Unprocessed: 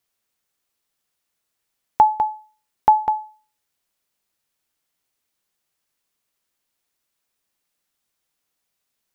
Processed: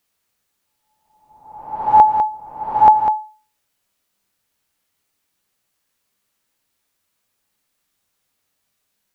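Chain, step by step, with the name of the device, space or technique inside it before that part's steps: reverse reverb (reverse; reverberation RT60 1.0 s, pre-delay 7 ms, DRR -0.5 dB; reverse); trim +2.5 dB

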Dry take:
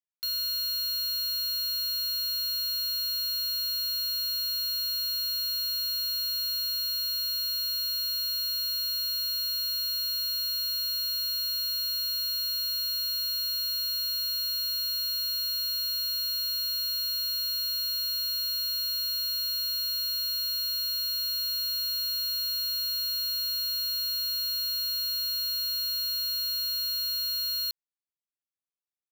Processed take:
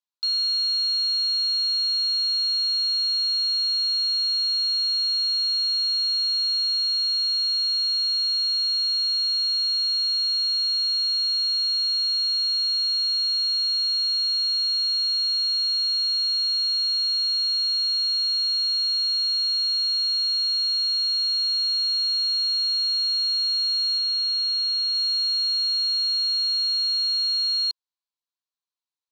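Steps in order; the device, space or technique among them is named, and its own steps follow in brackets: phone speaker on a table (cabinet simulation 350–7500 Hz, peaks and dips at 360 Hz -5 dB, 590 Hz -9 dB, 1 kHz +8 dB, 2 kHz -9 dB, 4.1 kHz +9 dB); 23.98–24.95 s: three-band isolator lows -18 dB, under 550 Hz, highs -22 dB, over 7.3 kHz

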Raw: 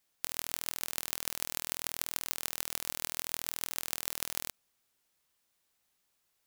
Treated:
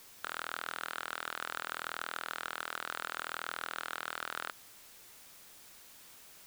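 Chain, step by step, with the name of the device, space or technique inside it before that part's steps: drive-through speaker (band-pass 510–2900 Hz; peaking EQ 1.4 kHz +8.5 dB 0.51 oct; hard clipper -34.5 dBFS, distortion -5 dB; white noise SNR 13 dB); trim +9 dB

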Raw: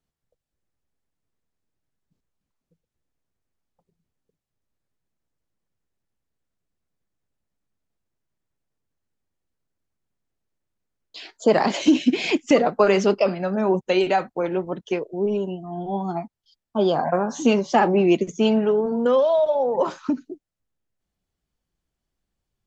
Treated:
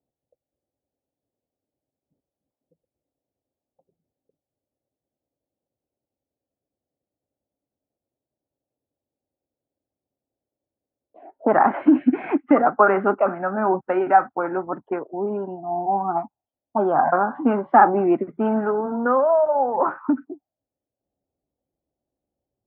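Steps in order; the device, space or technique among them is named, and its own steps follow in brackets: envelope filter bass rig (touch-sensitive low-pass 540–1400 Hz up, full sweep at -22 dBFS; cabinet simulation 80–2200 Hz, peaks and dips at 180 Hz -6 dB, 280 Hz +6 dB, 470 Hz -5 dB, 790 Hz +7 dB); trim -2 dB

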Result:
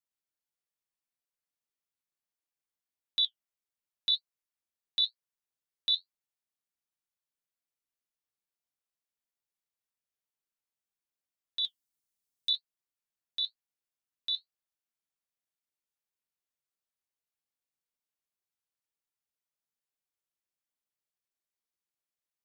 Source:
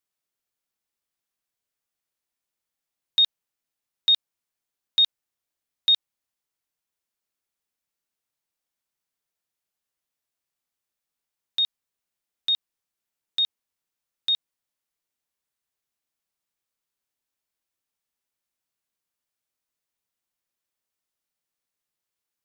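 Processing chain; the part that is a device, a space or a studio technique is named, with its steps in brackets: 11.64–12.53 s: tone controls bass +7 dB, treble +9 dB; alien voice (ring modulator 200 Hz; flange 0.95 Hz, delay 5.9 ms, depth 8.9 ms, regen -53%); trim -2 dB

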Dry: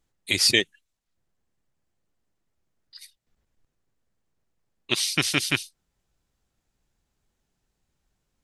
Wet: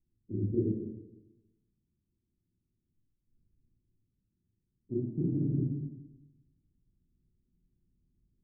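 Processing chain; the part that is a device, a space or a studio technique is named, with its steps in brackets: next room (low-pass 290 Hz 24 dB/octave; reverberation RT60 1.0 s, pre-delay 21 ms, DRR -6 dB); trim -3.5 dB

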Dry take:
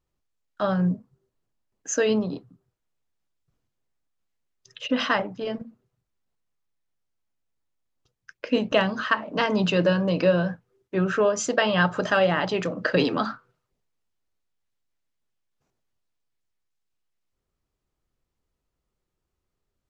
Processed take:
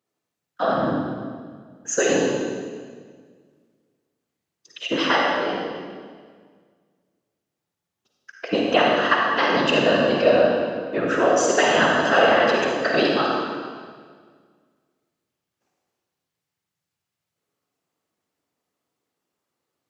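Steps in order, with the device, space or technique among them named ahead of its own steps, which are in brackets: whispering ghost (whisper effect; high-pass 290 Hz 12 dB/octave; reverberation RT60 1.7 s, pre-delay 42 ms, DRR -1.5 dB); trim +2 dB

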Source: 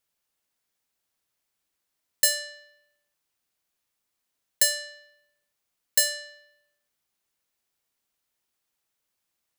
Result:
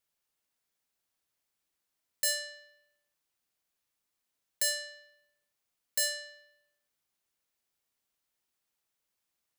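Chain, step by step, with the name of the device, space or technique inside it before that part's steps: soft clipper into limiter (saturation -8.5 dBFS, distortion -21 dB; peak limiter -16 dBFS, peak gain reduction 6 dB); trim -3.5 dB

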